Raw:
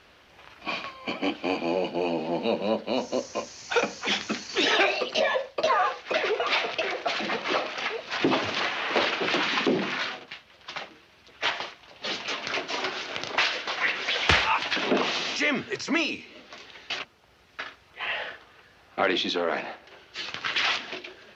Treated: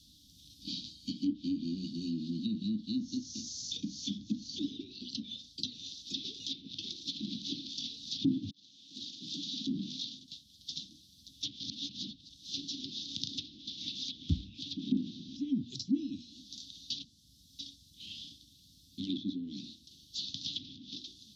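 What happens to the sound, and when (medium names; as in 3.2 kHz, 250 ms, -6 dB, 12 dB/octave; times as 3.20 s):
8.51–10.79 s: fade in
11.63–12.54 s: reverse
whole clip: Chebyshev band-stop 290–3500 Hz, order 5; treble shelf 5.7 kHz +11.5 dB; low-pass that closes with the level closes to 1.1 kHz, closed at -27 dBFS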